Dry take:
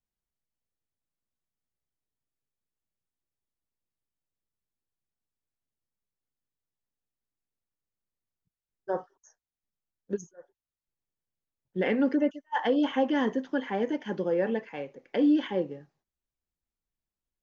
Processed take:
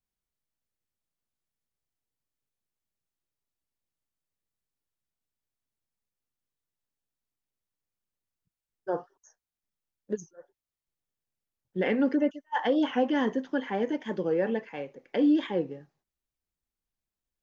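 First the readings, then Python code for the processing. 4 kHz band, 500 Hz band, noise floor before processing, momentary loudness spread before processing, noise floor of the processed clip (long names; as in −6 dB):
0.0 dB, 0.0 dB, below −85 dBFS, 12 LU, below −85 dBFS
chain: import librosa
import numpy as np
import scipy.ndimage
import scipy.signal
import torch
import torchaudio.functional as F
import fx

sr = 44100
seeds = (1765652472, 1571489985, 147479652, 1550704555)

y = fx.record_warp(x, sr, rpm=45.0, depth_cents=100.0)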